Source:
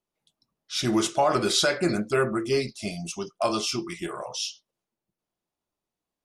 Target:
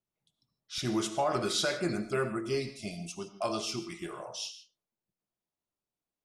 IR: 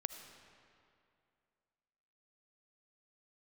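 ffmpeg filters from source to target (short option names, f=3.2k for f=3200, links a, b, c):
-filter_complex "[0:a]asetnsamples=n=441:p=0,asendcmd='0.78 equalizer g 2.5',equalizer=f=120:t=o:w=1.2:g=10.5[a];[1:a]atrim=start_sample=2205,afade=t=out:st=0.22:d=0.01,atrim=end_sample=10143[b];[a][b]afir=irnorm=-1:irlink=0,volume=-6dB"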